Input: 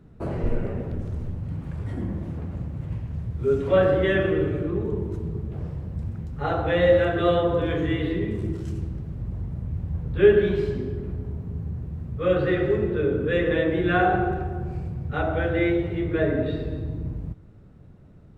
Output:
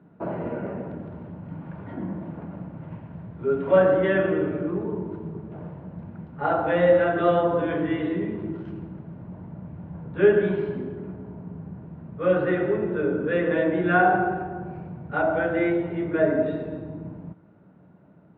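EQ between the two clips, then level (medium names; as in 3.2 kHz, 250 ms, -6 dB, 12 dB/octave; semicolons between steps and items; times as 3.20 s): cabinet simulation 170–3100 Hz, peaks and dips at 180 Hz +8 dB, 300 Hz +5 dB, 630 Hz +8 dB, 920 Hz +9 dB, 1.4 kHz +8 dB; band-stop 1.3 kHz, Q 20; -3.5 dB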